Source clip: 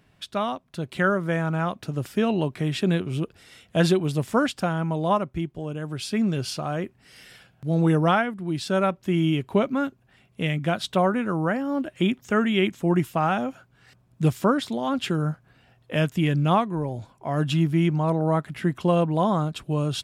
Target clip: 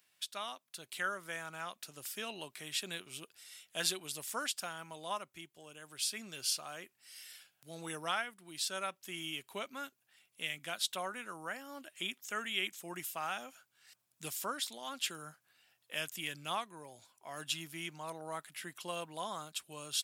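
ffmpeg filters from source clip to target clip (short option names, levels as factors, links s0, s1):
-af "aderivative,volume=1.26"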